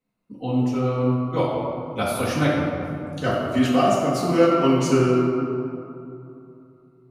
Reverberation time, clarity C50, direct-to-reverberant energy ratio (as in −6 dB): 2.8 s, −1.0 dB, −9.0 dB